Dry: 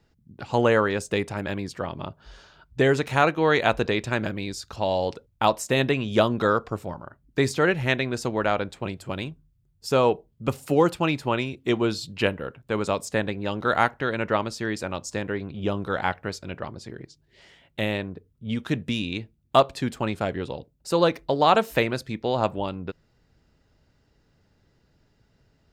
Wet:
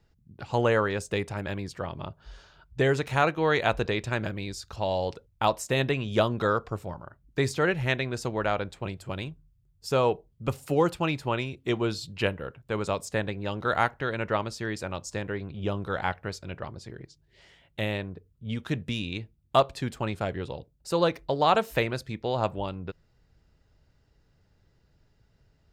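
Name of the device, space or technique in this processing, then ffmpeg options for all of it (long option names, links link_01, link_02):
low shelf boost with a cut just above: -af "lowshelf=frequency=110:gain=6.5,equalizer=frequency=250:width_type=o:width=0.74:gain=-4,volume=-3.5dB"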